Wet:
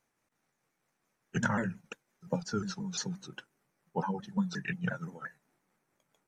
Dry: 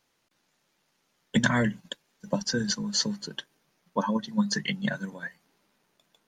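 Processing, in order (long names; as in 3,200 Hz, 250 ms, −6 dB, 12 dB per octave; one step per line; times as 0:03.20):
pitch shifter swept by a sawtooth −3.5 semitones, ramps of 175 ms
flat-topped bell 3,800 Hz −9 dB 1.1 octaves
level −4.5 dB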